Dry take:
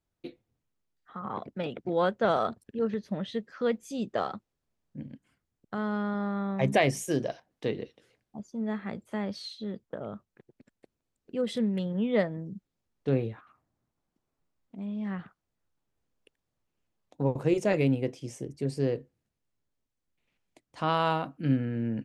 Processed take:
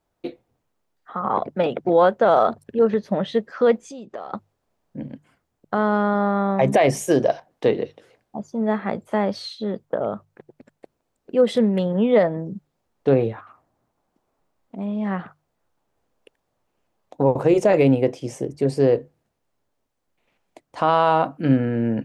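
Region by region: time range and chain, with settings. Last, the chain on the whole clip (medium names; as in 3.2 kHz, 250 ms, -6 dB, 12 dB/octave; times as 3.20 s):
3.81–4.33 s: low-pass 8.2 kHz 24 dB/octave + compression, threshold -45 dBFS
whole clip: peaking EQ 720 Hz +10 dB 2.1 oct; hum notches 50/100/150 Hz; peak limiter -13.5 dBFS; trim +6 dB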